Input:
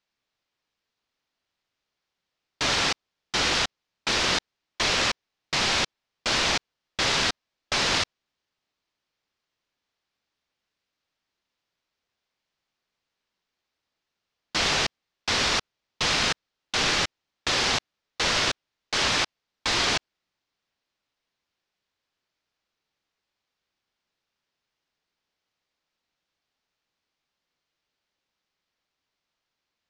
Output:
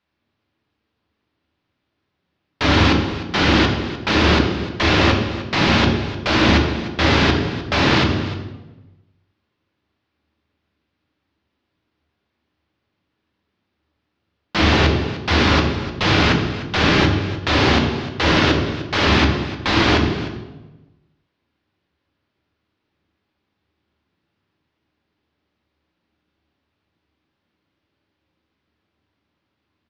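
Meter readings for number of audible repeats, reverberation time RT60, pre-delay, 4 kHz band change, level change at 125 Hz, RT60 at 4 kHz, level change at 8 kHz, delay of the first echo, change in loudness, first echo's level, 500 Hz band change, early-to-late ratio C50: 1, 1.2 s, 3 ms, +3.0 dB, +20.0 dB, 0.90 s, -6.0 dB, 0.302 s, +7.0 dB, -15.0 dB, +12.5 dB, 4.0 dB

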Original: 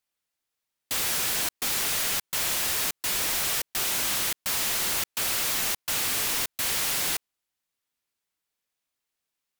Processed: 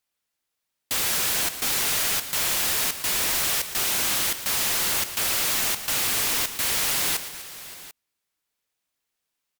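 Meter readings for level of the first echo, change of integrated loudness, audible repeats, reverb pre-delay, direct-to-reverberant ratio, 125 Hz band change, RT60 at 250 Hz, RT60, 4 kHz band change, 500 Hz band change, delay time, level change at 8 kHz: -13.0 dB, +3.0 dB, 4, none, none, +3.0 dB, none, none, +3.0 dB, +3.0 dB, 0.117 s, +3.0 dB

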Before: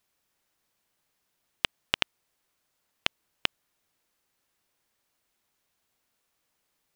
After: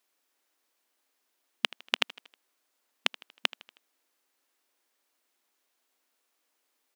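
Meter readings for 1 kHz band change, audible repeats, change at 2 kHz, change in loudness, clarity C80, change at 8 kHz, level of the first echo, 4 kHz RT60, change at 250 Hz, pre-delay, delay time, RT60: 0.0 dB, 3, 0.0 dB, 0.0 dB, none, 0.0 dB, -20.0 dB, none, -2.0 dB, none, 79 ms, none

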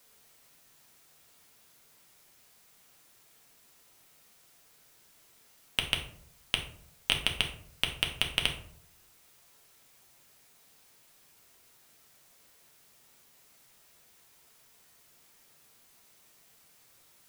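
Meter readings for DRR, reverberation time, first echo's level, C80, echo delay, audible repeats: 1.5 dB, 0.60 s, none, 12.5 dB, none, none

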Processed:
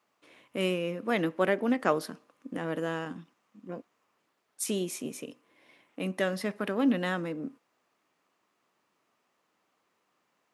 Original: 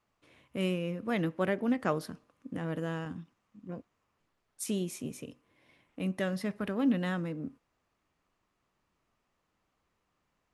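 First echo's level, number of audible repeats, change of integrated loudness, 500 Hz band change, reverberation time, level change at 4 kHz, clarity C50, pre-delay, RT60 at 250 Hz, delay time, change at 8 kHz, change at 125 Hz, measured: none, none, +2.5 dB, +4.5 dB, none, +5.0 dB, none, none, none, none, +5.0 dB, -2.5 dB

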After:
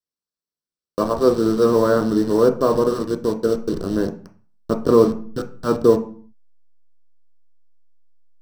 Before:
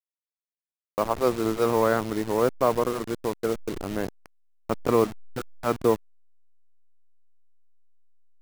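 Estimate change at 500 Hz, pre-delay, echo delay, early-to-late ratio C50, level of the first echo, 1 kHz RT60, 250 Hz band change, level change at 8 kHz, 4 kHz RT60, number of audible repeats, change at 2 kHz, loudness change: +7.5 dB, 3 ms, none, 12.5 dB, none, 0.45 s, +9.0 dB, +1.5 dB, 0.40 s, none, +0.5 dB, +7.0 dB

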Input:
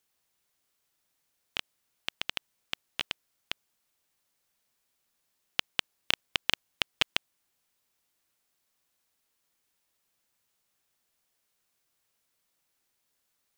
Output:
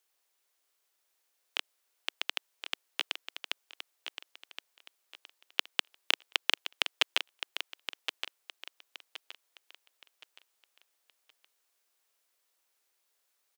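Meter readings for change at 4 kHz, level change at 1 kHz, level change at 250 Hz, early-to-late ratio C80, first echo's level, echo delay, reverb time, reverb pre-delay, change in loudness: +0.5 dB, +0.5 dB, -7.5 dB, none, -9.0 dB, 1.07 s, none, none, -1.0 dB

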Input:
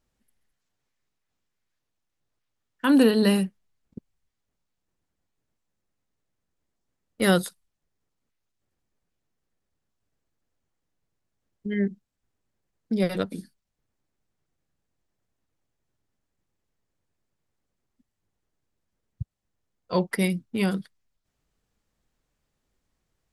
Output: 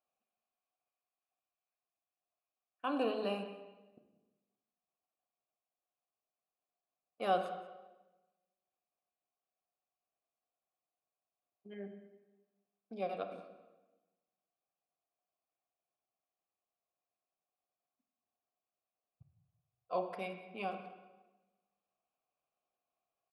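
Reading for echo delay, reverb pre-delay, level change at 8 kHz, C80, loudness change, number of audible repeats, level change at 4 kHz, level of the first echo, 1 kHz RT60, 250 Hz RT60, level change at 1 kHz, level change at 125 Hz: 0.185 s, 27 ms, under -30 dB, 9.0 dB, -14.5 dB, 1, -16.0 dB, -19.0 dB, 1.1 s, 1.3 s, -3.5 dB, -24.0 dB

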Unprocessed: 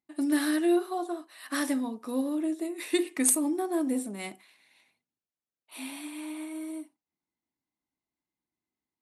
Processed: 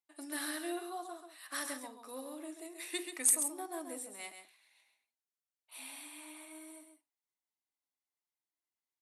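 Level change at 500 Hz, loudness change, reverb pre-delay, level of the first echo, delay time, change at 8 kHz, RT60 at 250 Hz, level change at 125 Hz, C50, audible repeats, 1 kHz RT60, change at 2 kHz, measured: -13.0 dB, -7.5 dB, none, -8.0 dB, 0.134 s, -2.5 dB, none, n/a, none, 1, none, -6.5 dB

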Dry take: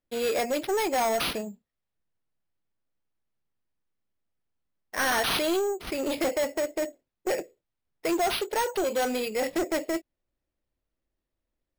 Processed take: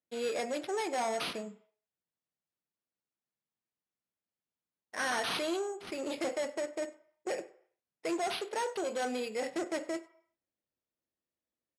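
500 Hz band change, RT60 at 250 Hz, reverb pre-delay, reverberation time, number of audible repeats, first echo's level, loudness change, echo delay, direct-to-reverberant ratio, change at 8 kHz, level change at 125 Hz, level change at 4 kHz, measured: -7.5 dB, 0.40 s, 3 ms, 0.55 s, 1, -22.5 dB, -7.5 dB, 96 ms, 10.5 dB, -8.0 dB, -10.0 dB, -7.5 dB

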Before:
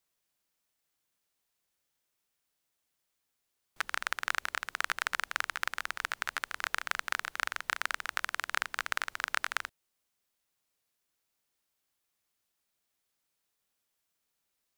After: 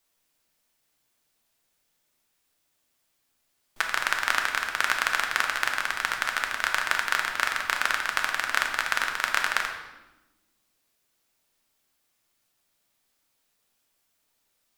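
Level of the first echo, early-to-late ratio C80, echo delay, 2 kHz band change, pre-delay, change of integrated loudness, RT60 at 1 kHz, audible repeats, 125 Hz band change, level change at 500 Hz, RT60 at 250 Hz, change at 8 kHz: none, 8.0 dB, none, +8.5 dB, 3 ms, +8.5 dB, 1.0 s, none, n/a, +9.5 dB, 1.8 s, +8.0 dB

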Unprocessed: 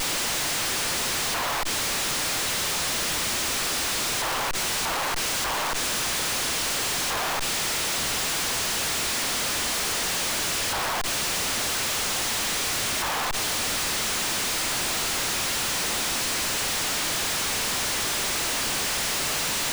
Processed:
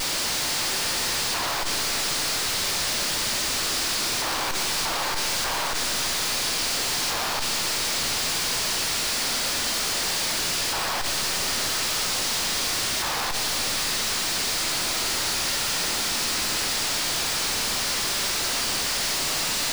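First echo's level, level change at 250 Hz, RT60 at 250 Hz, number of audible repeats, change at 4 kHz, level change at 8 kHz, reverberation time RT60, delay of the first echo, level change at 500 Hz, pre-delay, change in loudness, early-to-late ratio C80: none, -0.5 dB, 3.0 s, none, +2.5 dB, +0.5 dB, 3.0 s, none, -0.5 dB, 13 ms, +1.0 dB, 8.0 dB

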